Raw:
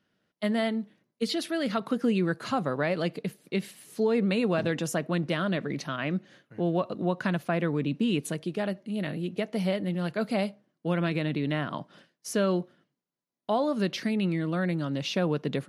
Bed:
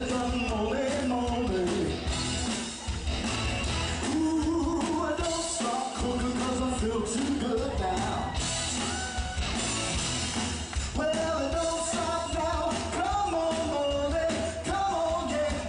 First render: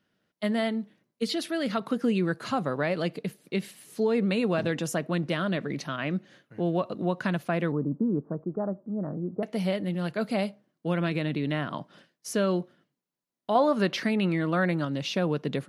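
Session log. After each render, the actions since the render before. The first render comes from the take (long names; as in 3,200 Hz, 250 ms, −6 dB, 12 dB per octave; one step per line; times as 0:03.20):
0:07.72–0:09.43: Butterworth low-pass 1,300 Hz 48 dB per octave
0:13.55–0:14.85: parametric band 1,100 Hz +7.5 dB 2.5 octaves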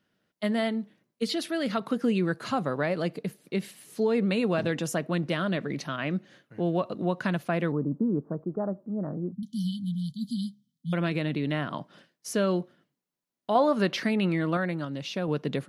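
0:02.85–0:03.61: dynamic equaliser 3,100 Hz, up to −4 dB, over −49 dBFS, Q 1.2
0:09.32–0:10.93: linear-phase brick-wall band-stop 260–3,000 Hz
0:14.57–0:15.28: clip gain −4 dB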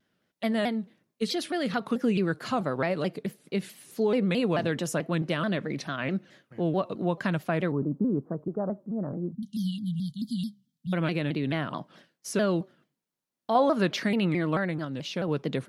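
pitch modulation by a square or saw wave saw down 4.6 Hz, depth 160 cents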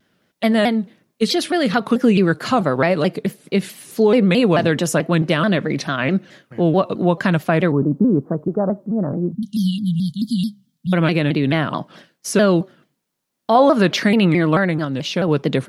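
level +11 dB
brickwall limiter −3 dBFS, peak gain reduction 3 dB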